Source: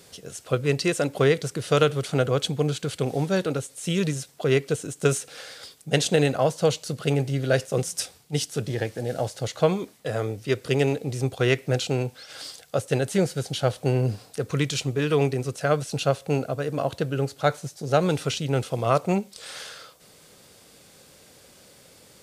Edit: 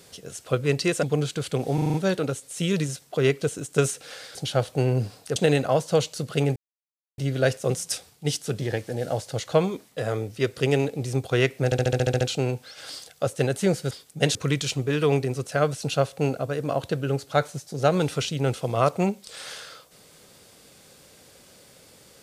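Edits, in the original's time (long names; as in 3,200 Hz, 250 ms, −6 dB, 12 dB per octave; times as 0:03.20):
0:01.03–0:02.50: remove
0:03.21: stutter 0.04 s, 6 plays
0:05.62–0:06.06: swap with 0:13.43–0:14.44
0:07.26: splice in silence 0.62 s
0:11.73: stutter 0.07 s, 9 plays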